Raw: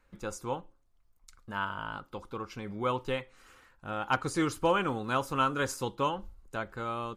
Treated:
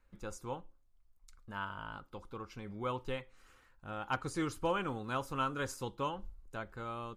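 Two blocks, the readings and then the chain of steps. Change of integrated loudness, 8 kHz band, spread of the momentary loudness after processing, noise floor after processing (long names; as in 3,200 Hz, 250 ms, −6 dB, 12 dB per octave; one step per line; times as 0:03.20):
−6.5 dB, −7.0 dB, 12 LU, −67 dBFS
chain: low-shelf EQ 79 Hz +8.5 dB
level −7 dB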